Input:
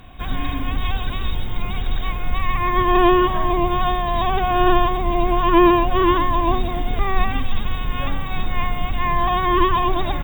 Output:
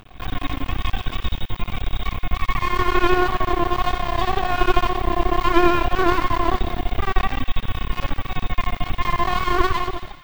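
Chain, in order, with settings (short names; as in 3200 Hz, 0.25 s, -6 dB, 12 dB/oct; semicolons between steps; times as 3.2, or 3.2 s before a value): ending faded out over 0.58 s; half-wave rectifier; thin delay 84 ms, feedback 68%, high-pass 1600 Hz, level -11.5 dB; gain +2 dB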